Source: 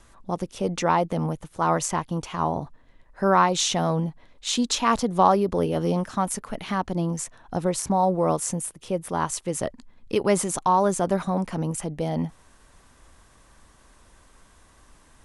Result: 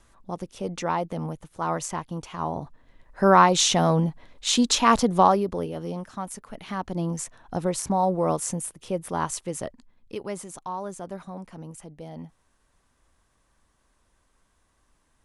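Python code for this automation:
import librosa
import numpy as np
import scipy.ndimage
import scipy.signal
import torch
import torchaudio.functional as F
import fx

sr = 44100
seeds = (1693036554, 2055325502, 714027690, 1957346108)

y = fx.gain(x, sr, db=fx.line((2.38, -5.0), (3.24, 3.0), (5.09, 3.0), (5.77, -8.5), (6.43, -8.5), (7.08, -1.5), (9.31, -1.5), (10.38, -13.0)))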